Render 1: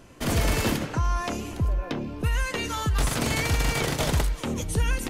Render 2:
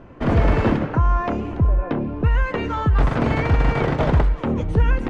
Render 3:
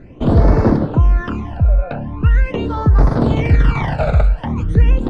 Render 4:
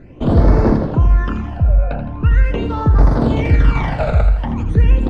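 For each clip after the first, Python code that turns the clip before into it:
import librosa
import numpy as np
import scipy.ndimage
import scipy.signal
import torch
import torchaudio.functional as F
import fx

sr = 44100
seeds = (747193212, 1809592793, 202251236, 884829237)

y1 = scipy.signal.sosfilt(scipy.signal.butter(2, 1500.0, 'lowpass', fs=sr, output='sos'), x)
y1 = F.gain(torch.from_numpy(y1), 7.5).numpy()
y2 = fx.phaser_stages(y1, sr, stages=12, low_hz=310.0, high_hz=2900.0, hz=0.42, feedback_pct=30)
y2 = F.gain(torch.from_numpy(y2), 4.5).numpy()
y3 = fx.echo_feedback(y2, sr, ms=82, feedback_pct=47, wet_db=-9)
y3 = F.gain(torch.from_numpy(y3), -1.0).numpy()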